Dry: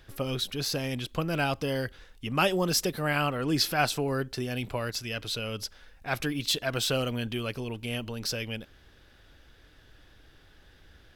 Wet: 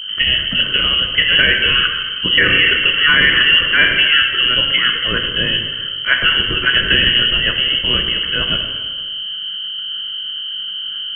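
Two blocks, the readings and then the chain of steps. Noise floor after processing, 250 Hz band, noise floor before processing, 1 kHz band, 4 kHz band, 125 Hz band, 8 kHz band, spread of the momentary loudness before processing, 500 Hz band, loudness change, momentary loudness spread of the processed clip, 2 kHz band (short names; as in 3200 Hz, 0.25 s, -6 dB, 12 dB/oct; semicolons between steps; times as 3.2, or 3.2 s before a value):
-26 dBFS, +3.5 dB, -58 dBFS, +6.5 dB, +23.0 dB, +4.0 dB, under -40 dB, 9 LU, +3.0 dB, +16.5 dB, 12 LU, +21.5 dB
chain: expander -51 dBFS; low shelf 230 Hz -5 dB; fixed phaser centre 2300 Hz, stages 6; hum 50 Hz, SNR 13 dB; plate-style reverb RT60 1.5 s, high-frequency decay 1×, DRR 2.5 dB; inverted band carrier 3100 Hz; maximiser +21 dB; gain -1 dB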